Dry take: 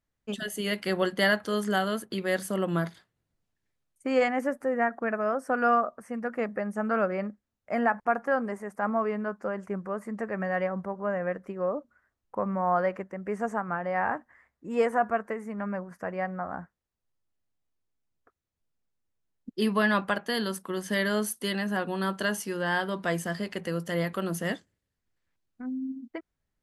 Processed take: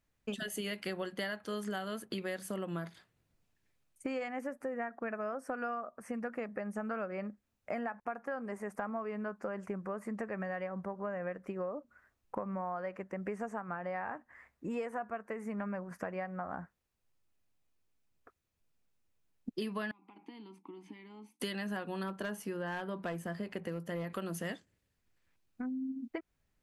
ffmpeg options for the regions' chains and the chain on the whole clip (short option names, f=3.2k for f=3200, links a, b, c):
-filter_complex "[0:a]asettb=1/sr,asplit=3[a][b][c];[a]atrim=end=19.914[d];[b]atrim=start=19.91:end=21.4,asetpts=PTS-STARTPTS,afade=t=in:d=0.004:c=qsin,afade=t=out:st=1.486:d=0.004:c=qsin,acompressor=threshold=-34dB:ratio=12:attack=3.2:release=140:knee=1:detection=peak,asplit=3[e][f][g];[e]bandpass=f=300:t=q:w=8,volume=0dB[h];[f]bandpass=f=870:t=q:w=8,volume=-6dB[i];[g]bandpass=f=2.24k:t=q:w=8,volume=-9dB[j];[h][i][j]amix=inputs=3:normalize=0[k];[c]atrim=start=21.396[l];[d][k]acrossfade=d=0.004:c1=hsin:c2=qsin[m];[m][l]acrossfade=d=0.004:c1=qsin:c2=hsin,asettb=1/sr,asplit=3[n][o][p];[n]atrim=end=22.034[q];[o]atrim=start=22.03:end=24.1,asetpts=PTS-STARTPTS,afade=t=in:d=0.004:c=qsin,afade=t=out:st=2.066:d=0.004:c=qsin,equalizer=f=5.8k:w=0.39:g=-10,volume=22.5dB,asoftclip=hard,volume=-22.5dB[r];[p]atrim=start=24.096[s];[q][r]acrossfade=d=0.004:c1=hsin:c2=qsin[t];[t][s]acrossfade=d=0.004:c1=qsin:c2=hsin,equalizer=f=2.5k:t=o:w=0.24:g=4.5,acompressor=threshold=-39dB:ratio=8,volume=3.5dB"